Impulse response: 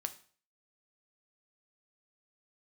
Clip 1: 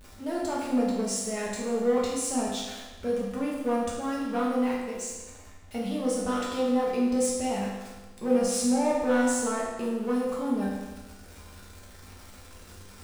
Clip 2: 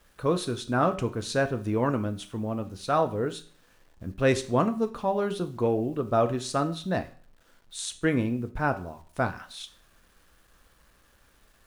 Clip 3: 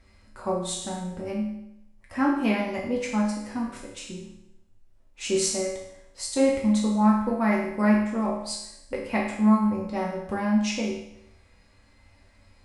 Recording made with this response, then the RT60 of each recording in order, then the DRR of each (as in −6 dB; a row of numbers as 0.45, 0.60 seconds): 2; 1.2, 0.45, 0.80 seconds; −5.5, 8.0, −4.5 decibels